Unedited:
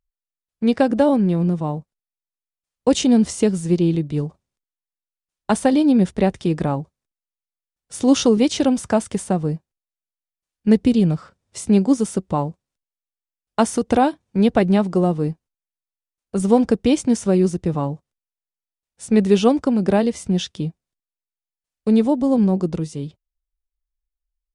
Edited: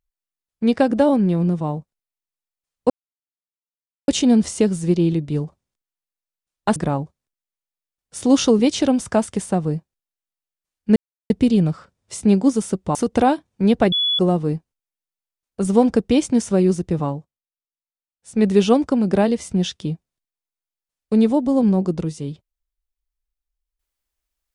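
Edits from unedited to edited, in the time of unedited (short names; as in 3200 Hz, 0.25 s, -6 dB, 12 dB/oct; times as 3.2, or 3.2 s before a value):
2.9 insert silence 1.18 s
5.58–6.54 cut
10.74 insert silence 0.34 s
12.39–13.7 cut
14.67–14.94 bleep 3410 Hz -16.5 dBFS
17.8–19.23 dip -16 dB, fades 0.31 s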